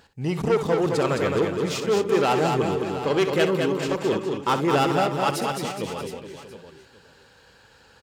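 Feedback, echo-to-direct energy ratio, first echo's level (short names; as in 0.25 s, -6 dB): no steady repeat, -2.0 dB, -11.0 dB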